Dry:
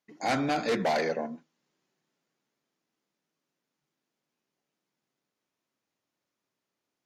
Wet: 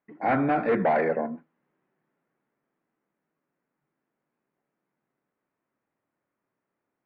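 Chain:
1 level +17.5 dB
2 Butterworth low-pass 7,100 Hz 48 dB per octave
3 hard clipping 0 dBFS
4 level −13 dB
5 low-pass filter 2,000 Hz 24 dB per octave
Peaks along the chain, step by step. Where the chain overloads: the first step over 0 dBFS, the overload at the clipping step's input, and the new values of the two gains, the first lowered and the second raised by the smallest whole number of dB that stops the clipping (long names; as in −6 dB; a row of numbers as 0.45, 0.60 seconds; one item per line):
−2.5, −2.5, −2.5, −15.5, −15.5 dBFS
no step passes full scale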